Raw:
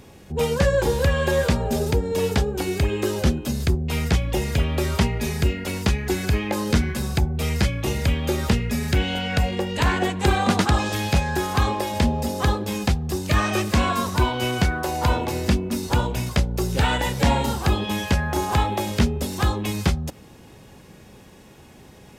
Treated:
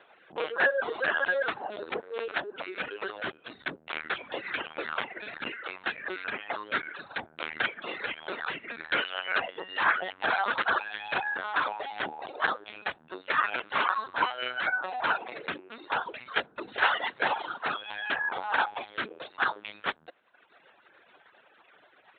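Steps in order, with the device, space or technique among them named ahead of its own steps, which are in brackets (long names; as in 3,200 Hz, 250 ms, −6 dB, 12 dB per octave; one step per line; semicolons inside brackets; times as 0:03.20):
talking toy (linear-prediction vocoder at 8 kHz pitch kept; high-pass filter 600 Hz 12 dB per octave; parametric band 1,500 Hz +10 dB 0.59 octaves)
reverb reduction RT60 0.88 s
0:15.63–0:16.06: low-pass filter 5,100 Hz
level −4.5 dB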